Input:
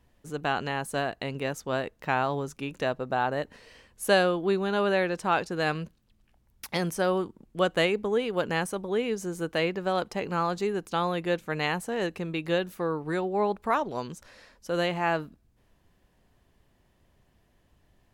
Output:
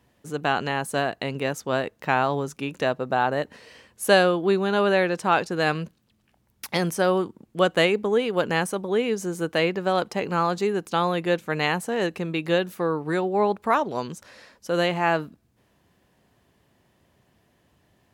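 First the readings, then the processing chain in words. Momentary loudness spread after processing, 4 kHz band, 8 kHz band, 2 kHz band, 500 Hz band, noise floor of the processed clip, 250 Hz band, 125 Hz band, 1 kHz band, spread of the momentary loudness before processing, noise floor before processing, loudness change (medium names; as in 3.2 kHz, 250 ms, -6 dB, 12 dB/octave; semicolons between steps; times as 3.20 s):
9 LU, +4.5 dB, +4.5 dB, +4.5 dB, +4.5 dB, -66 dBFS, +4.5 dB, +4.0 dB, +4.5 dB, 9 LU, -67 dBFS, +4.5 dB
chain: high-pass 100 Hz 12 dB/octave; trim +4.5 dB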